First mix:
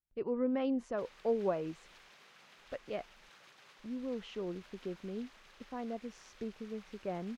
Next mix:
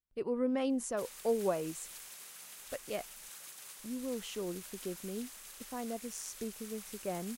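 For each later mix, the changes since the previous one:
master: remove air absorption 240 m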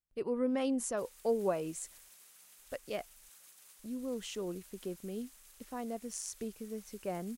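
background -11.5 dB; master: add high shelf 6600 Hz +4.5 dB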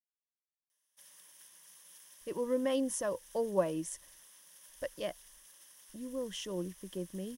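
speech: entry +2.10 s; master: add ripple EQ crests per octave 1.2, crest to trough 9 dB

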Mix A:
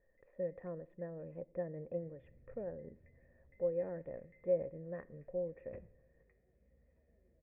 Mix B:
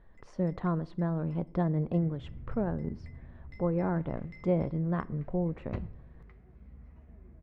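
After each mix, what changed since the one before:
master: remove vocal tract filter e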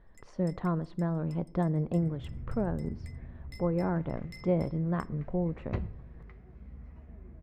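first sound: remove LPF 2200 Hz 12 dB/oct; second sound +4.0 dB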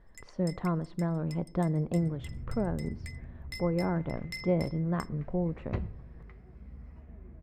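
first sound +10.0 dB

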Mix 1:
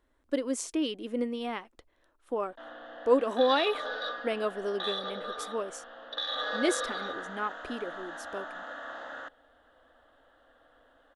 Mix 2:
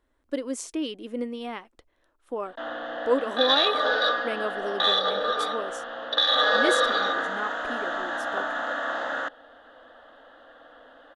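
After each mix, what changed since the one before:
background +12.0 dB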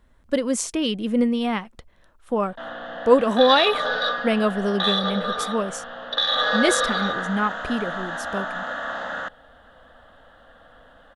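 speech +9.5 dB; master: add resonant low shelf 240 Hz +6.5 dB, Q 3

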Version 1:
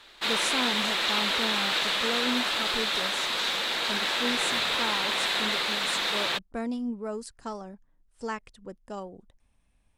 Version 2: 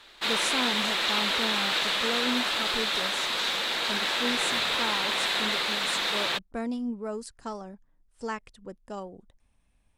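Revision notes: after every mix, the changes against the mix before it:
none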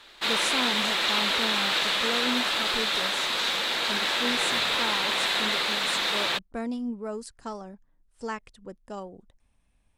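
background: send +7.0 dB

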